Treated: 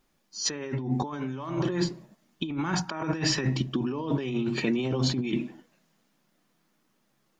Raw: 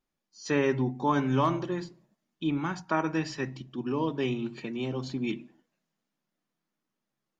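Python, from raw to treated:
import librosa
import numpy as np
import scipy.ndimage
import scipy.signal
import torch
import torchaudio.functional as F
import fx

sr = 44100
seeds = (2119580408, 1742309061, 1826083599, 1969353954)

y = fx.over_compress(x, sr, threshold_db=-37.0, ratio=-1.0)
y = y * librosa.db_to_amplitude(7.5)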